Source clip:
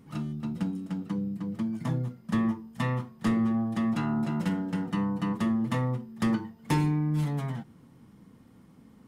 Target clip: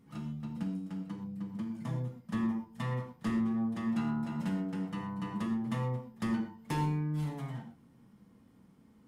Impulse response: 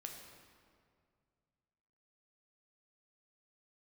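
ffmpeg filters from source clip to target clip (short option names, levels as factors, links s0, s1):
-filter_complex "[1:a]atrim=start_sample=2205,afade=t=out:st=0.22:d=0.01,atrim=end_sample=10143,asetrate=57330,aresample=44100[s0];[0:a][s0]afir=irnorm=-1:irlink=0"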